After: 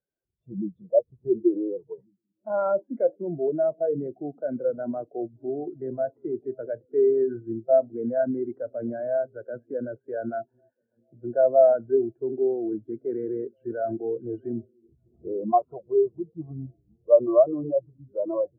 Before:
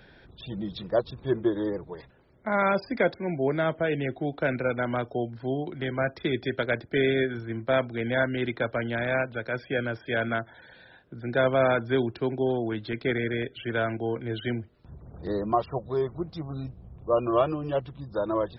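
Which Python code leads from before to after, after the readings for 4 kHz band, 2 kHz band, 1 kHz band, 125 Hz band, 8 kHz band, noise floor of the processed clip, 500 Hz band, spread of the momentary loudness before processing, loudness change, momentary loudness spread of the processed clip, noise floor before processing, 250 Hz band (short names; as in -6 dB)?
under -40 dB, -18.5 dB, -0.5 dB, -9.5 dB, n/a, -78 dBFS, +4.0 dB, 11 LU, +2.0 dB, 15 LU, -54 dBFS, -0.5 dB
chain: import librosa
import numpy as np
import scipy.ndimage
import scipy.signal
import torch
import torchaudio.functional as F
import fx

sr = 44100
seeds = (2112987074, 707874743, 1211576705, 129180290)

p1 = scipy.signal.sosfilt(scipy.signal.butter(2, 1100.0, 'lowpass', fs=sr, output='sos'), x)
p2 = fx.low_shelf(p1, sr, hz=310.0, db=-11.0)
p3 = fx.over_compress(p2, sr, threshold_db=-38.0, ratio=-1.0)
p4 = p2 + (p3 * librosa.db_to_amplitude(1.0))
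p5 = fx.quant_float(p4, sr, bits=2)
p6 = p5 + fx.echo_stepped(p5, sr, ms=722, hz=150.0, octaves=0.7, feedback_pct=70, wet_db=-10.0, dry=0)
p7 = fx.spectral_expand(p6, sr, expansion=2.5)
y = p7 * librosa.db_to_amplitude(7.0)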